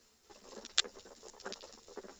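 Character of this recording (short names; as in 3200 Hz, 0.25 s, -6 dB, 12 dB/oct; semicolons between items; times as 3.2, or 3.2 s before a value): tremolo saw down 4.3 Hz, depth 50%; a quantiser's noise floor 12-bit, dither none; a shimmering, thickened sound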